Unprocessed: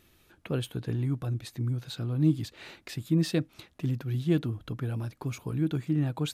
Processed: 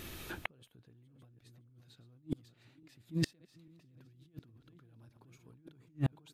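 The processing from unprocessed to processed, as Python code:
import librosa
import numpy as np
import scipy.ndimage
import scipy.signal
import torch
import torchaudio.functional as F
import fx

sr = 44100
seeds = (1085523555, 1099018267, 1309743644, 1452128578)

y = fx.reverse_delay_fb(x, sr, ms=283, feedback_pct=56, wet_db=-10)
y = fx.over_compress(y, sr, threshold_db=-34.0, ratio=-1.0)
y = fx.gate_flip(y, sr, shuts_db=-31.0, range_db=-38)
y = y * librosa.db_to_amplitude(11.0)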